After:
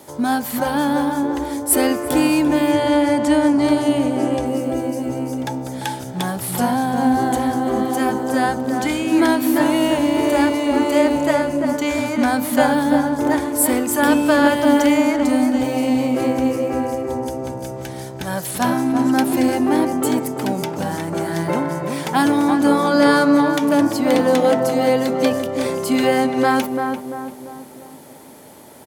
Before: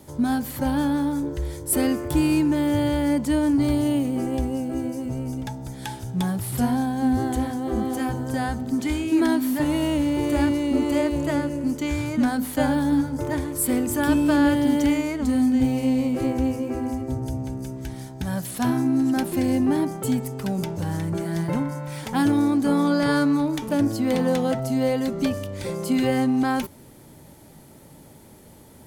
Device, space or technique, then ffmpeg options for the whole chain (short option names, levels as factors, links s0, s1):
filter by subtraction: -filter_complex "[0:a]asplit=2[s0][s1];[s1]lowpass=690,volume=-1[s2];[s0][s2]amix=inputs=2:normalize=0,asettb=1/sr,asplit=3[s3][s4][s5];[s3]atrim=end=2.714[s6];[s4]atrim=start=2.71:end=4.46,asetpts=PTS-STARTPTS,afade=t=in:d=0.004:c=qsin,afade=t=out:st=1.746:d=0.004:c=qsin,lowpass=9700[s7];[s5]atrim=start=4.456[s8];[s6][s7]acrossfade=d=0.004:c1=hsin:c2=qsin[s9];[s9][s8]acrossfade=d=0.004:c1=qsin:c2=hsin,asplit=2[s10][s11];[s11]adelay=342,lowpass=f=1300:p=1,volume=0.631,asplit=2[s12][s13];[s13]adelay=342,lowpass=f=1300:p=1,volume=0.49,asplit=2[s14][s15];[s15]adelay=342,lowpass=f=1300:p=1,volume=0.49,asplit=2[s16][s17];[s17]adelay=342,lowpass=f=1300:p=1,volume=0.49,asplit=2[s18][s19];[s19]adelay=342,lowpass=f=1300:p=1,volume=0.49,asplit=2[s20][s21];[s21]adelay=342,lowpass=f=1300:p=1,volume=0.49[s22];[s10][s12][s14][s16][s18][s20][s22]amix=inputs=7:normalize=0,volume=2.24"